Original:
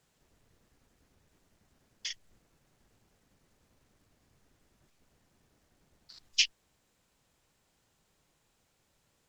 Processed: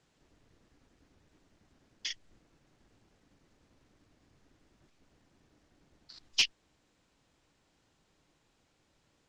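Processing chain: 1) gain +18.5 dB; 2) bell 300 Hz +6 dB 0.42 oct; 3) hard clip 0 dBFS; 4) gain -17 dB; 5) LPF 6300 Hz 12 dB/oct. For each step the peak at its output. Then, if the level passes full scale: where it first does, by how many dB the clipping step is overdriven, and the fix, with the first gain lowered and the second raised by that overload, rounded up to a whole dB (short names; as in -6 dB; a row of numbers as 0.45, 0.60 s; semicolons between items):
+8.0, +8.0, 0.0, -17.0, -16.0 dBFS; step 1, 8.0 dB; step 1 +10.5 dB, step 4 -9 dB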